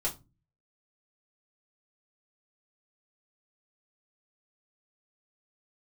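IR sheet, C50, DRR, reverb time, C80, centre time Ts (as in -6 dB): 15.0 dB, -5.5 dB, 0.25 s, 23.0 dB, 13 ms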